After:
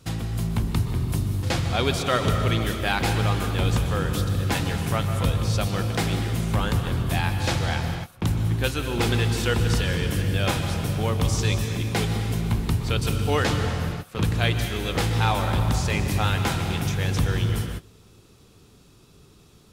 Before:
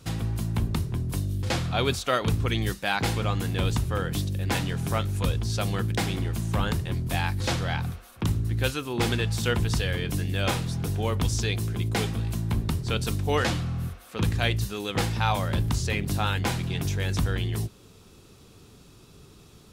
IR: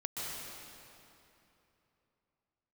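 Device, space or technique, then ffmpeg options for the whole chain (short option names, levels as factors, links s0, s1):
keyed gated reverb: -filter_complex "[0:a]asplit=3[s0][s1][s2];[1:a]atrim=start_sample=2205[s3];[s1][s3]afir=irnorm=-1:irlink=0[s4];[s2]apad=whole_len=869761[s5];[s4][s5]sidechaingate=range=0.0631:threshold=0.00794:ratio=16:detection=peak,volume=0.708[s6];[s0][s6]amix=inputs=2:normalize=0,volume=0.794"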